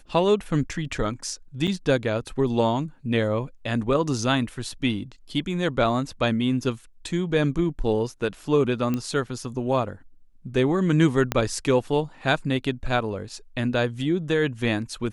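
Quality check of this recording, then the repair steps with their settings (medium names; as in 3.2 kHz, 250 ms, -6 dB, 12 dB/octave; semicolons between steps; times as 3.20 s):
1.67–1.68 s: dropout 6.7 ms
8.94 s: pop -14 dBFS
11.32 s: pop -8 dBFS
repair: de-click; interpolate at 1.67 s, 6.7 ms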